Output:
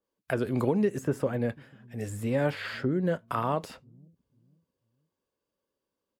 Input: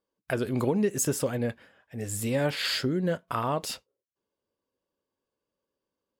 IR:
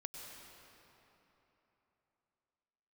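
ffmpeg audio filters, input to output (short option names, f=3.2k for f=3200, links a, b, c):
-filter_complex "[0:a]acrossover=split=270|1700|2000[a][b][c][d];[a]aecho=1:1:495|990|1485:0.112|0.0337|0.0101[e];[d]acompressor=threshold=-47dB:ratio=6[f];[e][b][c][f]amix=inputs=4:normalize=0,adynamicequalizer=threshold=0.00562:dfrequency=2300:dqfactor=0.7:tfrequency=2300:tqfactor=0.7:attack=5:release=100:ratio=0.375:range=2:mode=cutabove:tftype=highshelf"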